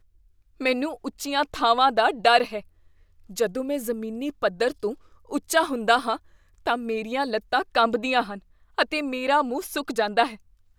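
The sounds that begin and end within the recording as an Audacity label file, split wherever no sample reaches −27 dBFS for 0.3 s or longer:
0.610000	2.590000	sound
3.380000	4.920000	sound
5.320000	6.160000	sound
6.670000	8.350000	sound
8.780000	10.280000	sound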